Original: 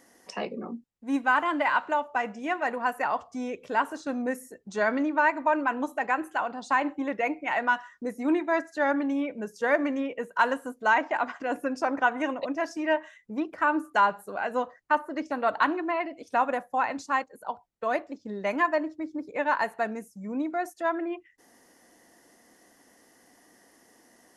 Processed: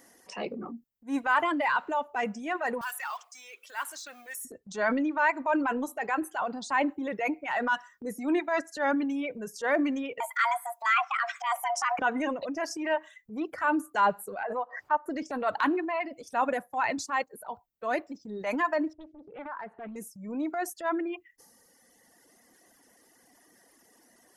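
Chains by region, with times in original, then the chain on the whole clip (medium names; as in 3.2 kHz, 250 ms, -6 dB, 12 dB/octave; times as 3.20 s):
2.81–4.45 s: companding laws mixed up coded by mu + high-pass 1.5 kHz
10.20–11.99 s: frequency shift +450 Hz + three bands compressed up and down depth 70%
14.43–15.06 s: transient shaper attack +4 dB, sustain -3 dB + band-pass filter 870 Hz, Q 1.4 + swell ahead of each attack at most 130 dB/s
18.93–19.96 s: low-pass 1.8 kHz + compression 2:1, threshold -42 dBFS + loudspeaker Doppler distortion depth 0.64 ms
whole clip: reverb removal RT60 1.7 s; treble shelf 10 kHz +7.5 dB; transient shaper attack -6 dB, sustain +6 dB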